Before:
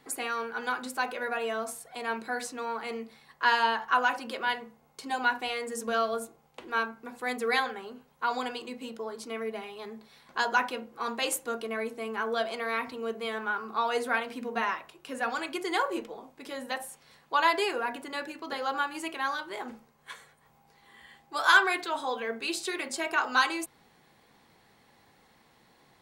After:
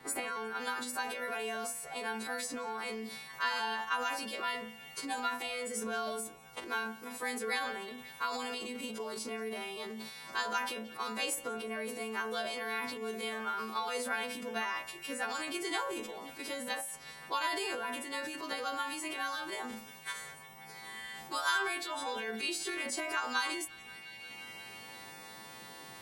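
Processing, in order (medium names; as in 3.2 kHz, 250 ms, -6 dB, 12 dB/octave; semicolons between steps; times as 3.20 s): partials quantised in pitch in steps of 2 st; bass shelf 110 Hz +8 dB; transient shaper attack +3 dB, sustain +8 dB; band-passed feedback delay 175 ms, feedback 79%, band-pass 2.8 kHz, level -20.5 dB; three bands compressed up and down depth 70%; trim -9 dB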